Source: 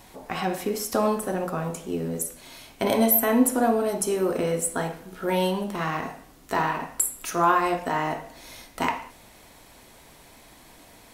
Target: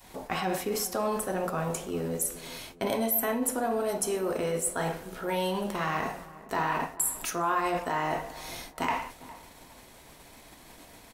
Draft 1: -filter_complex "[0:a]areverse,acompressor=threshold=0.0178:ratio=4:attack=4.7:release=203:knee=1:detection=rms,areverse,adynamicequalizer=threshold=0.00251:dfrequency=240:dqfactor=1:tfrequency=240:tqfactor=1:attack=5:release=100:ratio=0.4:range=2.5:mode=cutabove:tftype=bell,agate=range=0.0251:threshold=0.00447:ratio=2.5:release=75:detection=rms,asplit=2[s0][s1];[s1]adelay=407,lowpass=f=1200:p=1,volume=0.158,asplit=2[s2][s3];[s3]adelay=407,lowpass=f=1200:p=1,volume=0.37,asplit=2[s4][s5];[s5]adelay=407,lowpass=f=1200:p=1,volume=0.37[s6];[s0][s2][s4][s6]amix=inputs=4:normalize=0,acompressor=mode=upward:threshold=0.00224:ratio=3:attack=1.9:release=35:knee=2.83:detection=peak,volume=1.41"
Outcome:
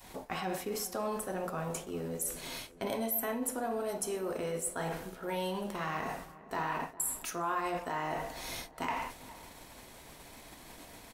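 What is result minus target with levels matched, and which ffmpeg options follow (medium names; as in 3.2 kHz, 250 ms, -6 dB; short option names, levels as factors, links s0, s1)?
compression: peak gain reduction +6 dB
-filter_complex "[0:a]areverse,acompressor=threshold=0.0447:ratio=4:attack=4.7:release=203:knee=1:detection=rms,areverse,adynamicequalizer=threshold=0.00251:dfrequency=240:dqfactor=1:tfrequency=240:tqfactor=1:attack=5:release=100:ratio=0.4:range=2.5:mode=cutabove:tftype=bell,agate=range=0.0251:threshold=0.00447:ratio=2.5:release=75:detection=rms,asplit=2[s0][s1];[s1]adelay=407,lowpass=f=1200:p=1,volume=0.158,asplit=2[s2][s3];[s3]adelay=407,lowpass=f=1200:p=1,volume=0.37,asplit=2[s4][s5];[s5]adelay=407,lowpass=f=1200:p=1,volume=0.37[s6];[s0][s2][s4][s6]amix=inputs=4:normalize=0,acompressor=mode=upward:threshold=0.00224:ratio=3:attack=1.9:release=35:knee=2.83:detection=peak,volume=1.41"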